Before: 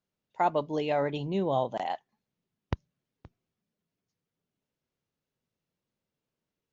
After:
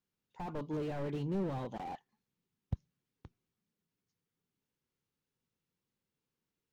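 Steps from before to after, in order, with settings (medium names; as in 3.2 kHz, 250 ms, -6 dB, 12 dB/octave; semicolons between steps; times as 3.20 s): peaking EQ 630 Hz -11 dB 0.3 oct; slew-rate limiter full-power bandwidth 9.5 Hz; trim -2 dB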